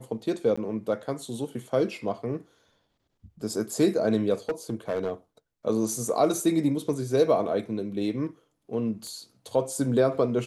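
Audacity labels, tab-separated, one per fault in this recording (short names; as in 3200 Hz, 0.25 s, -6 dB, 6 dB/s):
0.560000	0.570000	gap 15 ms
4.490000	5.110000	clipped -22.5 dBFS
9.070000	9.070000	pop -28 dBFS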